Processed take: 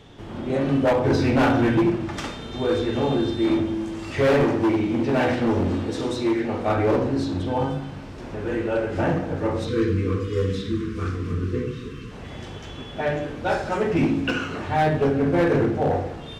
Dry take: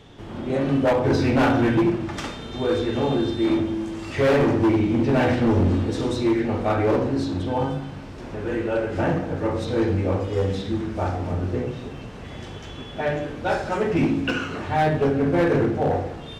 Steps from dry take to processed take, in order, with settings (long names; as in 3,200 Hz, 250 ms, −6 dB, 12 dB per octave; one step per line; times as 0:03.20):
0:04.46–0:06.68: low-shelf EQ 150 Hz −8.5 dB
0:09.69–0:12.11: gain on a spectral selection 500–1,000 Hz −24 dB